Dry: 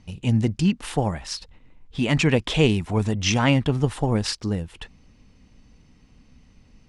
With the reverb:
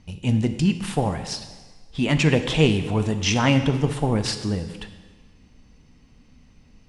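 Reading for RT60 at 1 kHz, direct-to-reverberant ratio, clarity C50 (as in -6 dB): 1.4 s, 8.0 dB, 10.5 dB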